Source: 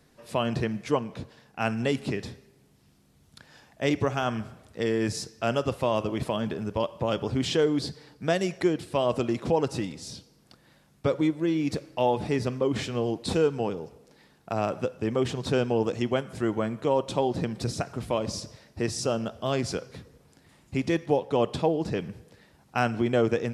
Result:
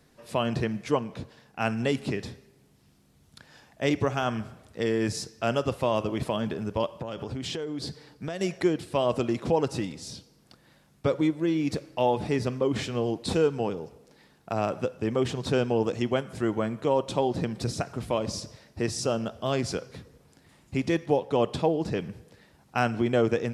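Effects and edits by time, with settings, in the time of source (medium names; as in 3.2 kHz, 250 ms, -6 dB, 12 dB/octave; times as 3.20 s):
6.95–8.41 s: compression 12:1, threshold -29 dBFS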